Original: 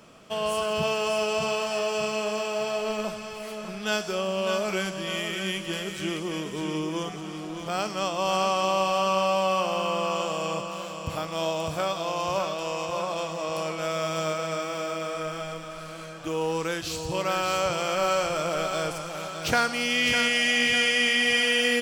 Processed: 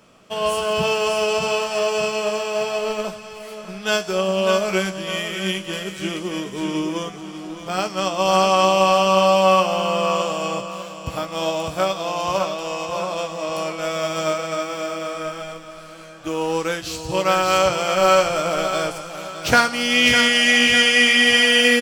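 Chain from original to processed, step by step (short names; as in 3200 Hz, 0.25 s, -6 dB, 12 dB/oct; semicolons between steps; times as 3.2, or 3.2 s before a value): doubler 16 ms -8.5 dB; upward expander 1.5:1, over -39 dBFS; gain +8.5 dB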